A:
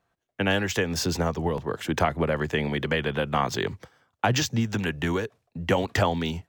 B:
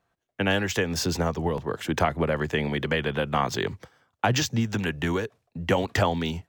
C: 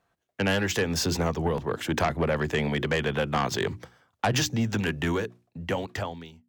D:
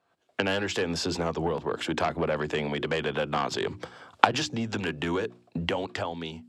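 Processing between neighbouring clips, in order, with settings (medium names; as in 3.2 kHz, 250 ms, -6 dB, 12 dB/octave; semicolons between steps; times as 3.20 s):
no audible change
fade out at the end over 1.51 s; hum notches 60/120/180/240/300/360 Hz; Chebyshev shaper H 5 -14 dB, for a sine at -9.5 dBFS; trim -4.5 dB
recorder AGC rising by 47 dB/s; cabinet simulation 130–9600 Hz, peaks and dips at 130 Hz -7 dB, 200 Hz -5 dB, 1.9 kHz -5 dB, 6.2 kHz -7 dB, 9.4 kHz -7 dB; trim -1 dB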